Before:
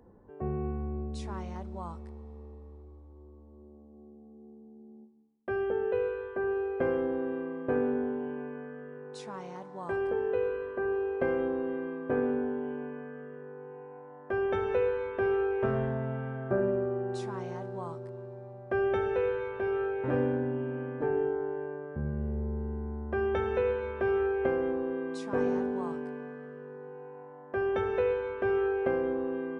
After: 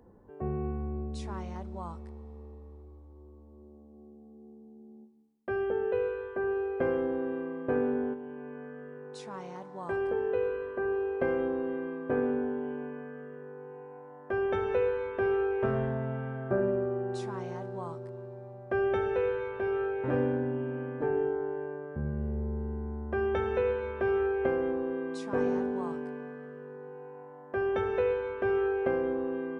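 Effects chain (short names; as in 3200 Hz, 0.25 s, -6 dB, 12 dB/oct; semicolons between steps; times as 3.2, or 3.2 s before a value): 8.13–9.31 compressor, threshold -38 dBFS, peak gain reduction 7 dB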